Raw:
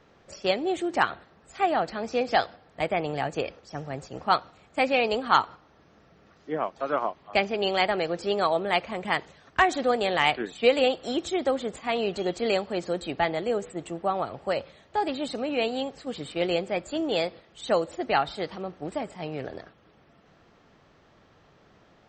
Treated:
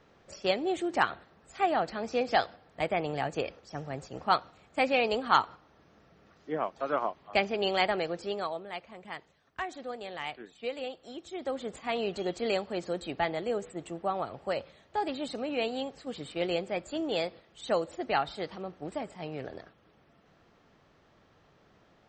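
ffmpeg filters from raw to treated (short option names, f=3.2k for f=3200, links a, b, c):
-af "volume=7.5dB,afade=t=out:st=7.89:d=0.77:silence=0.251189,afade=t=in:st=11.26:d=0.51:silence=0.298538"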